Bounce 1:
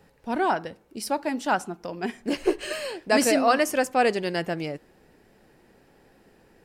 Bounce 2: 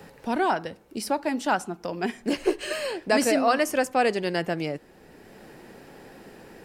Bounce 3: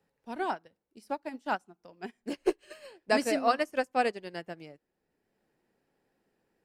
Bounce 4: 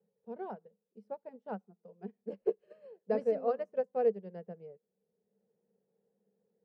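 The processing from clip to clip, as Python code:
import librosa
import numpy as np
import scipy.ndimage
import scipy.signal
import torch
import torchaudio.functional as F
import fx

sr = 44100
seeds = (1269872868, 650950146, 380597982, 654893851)

y1 = fx.band_squash(x, sr, depth_pct=40)
y2 = fx.upward_expand(y1, sr, threshold_db=-36.0, expansion=2.5)
y2 = F.gain(torch.from_numpy(y2), -2.0).numpy()
y3 = fx.double_bandpass(y2, sr, hz=300.0, octaves=1.2)
y3 = F.gain(torch.from_numpy(y3), 5.5).numpy()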